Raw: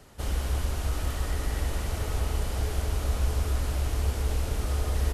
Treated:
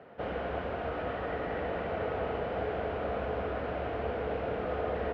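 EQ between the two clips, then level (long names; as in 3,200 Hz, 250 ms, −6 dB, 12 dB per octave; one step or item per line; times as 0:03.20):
high-frequency loss of the air 60 metres
loudspeaker in its box 170–2,700 Hz, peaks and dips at 190 Hz +3 dB, 490 Hz +10 dB, 1,500 Hz +4 dB
parametric band 690 Hz +9.5 dB 0.29 octaves
0.0 dB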